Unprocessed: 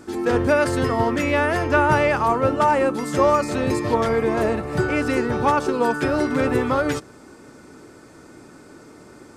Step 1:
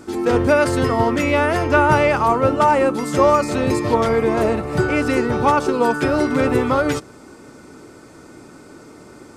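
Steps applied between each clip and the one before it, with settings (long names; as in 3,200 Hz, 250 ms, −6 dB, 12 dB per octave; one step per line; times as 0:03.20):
notch filter 1,700 Hz, Q 12
level +3 dB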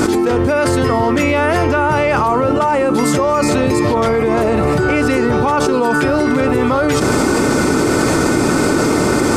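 envelope flattener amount 100%
level −2.5 dB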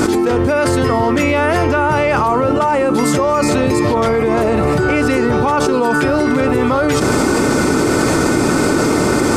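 no processing that can be heard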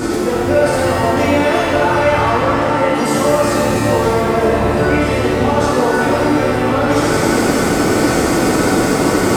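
reverb with rising layers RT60 2 s, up +7 semitones, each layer −8 dB, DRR −6.5 dB
level −7.5 dB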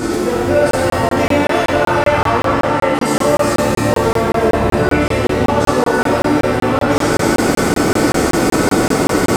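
regular buffer underruns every 0.19 s, samples 1,024, zero, from 0:00.71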